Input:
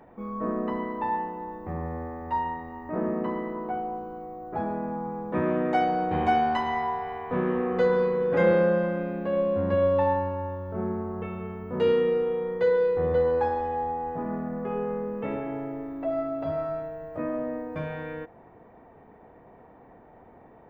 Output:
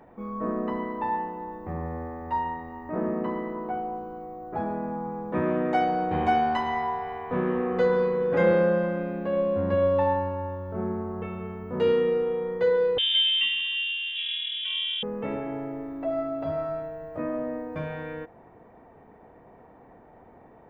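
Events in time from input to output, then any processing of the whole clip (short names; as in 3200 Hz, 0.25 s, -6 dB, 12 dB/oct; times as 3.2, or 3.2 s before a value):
12.98–15.03 inverted band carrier 3600 Hz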